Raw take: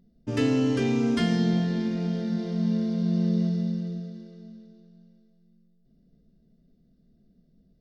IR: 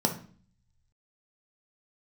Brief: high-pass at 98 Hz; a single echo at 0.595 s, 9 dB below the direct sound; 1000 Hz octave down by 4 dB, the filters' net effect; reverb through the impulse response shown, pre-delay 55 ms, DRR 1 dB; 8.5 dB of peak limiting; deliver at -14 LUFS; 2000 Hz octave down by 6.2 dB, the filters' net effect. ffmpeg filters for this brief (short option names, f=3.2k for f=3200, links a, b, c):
-filter_complex "[0:a]highpass=98,equalizer=f=1k:t=o:g=-4.5,equalizer=f=2k:t=o:g=-6.5,alimiter=limit=-22.5dB:level=0:latency=1,aecho=1:1:595:0.355,asplit=2[a][b];[1:a]atrim=start_sample=2205,adelay=55[c];[b][c]afir=irnorm=-1:irlink=0,volume=-10.5dB[d];[a][d]amix=inputs=2:normalize=0,volume=3.5dB"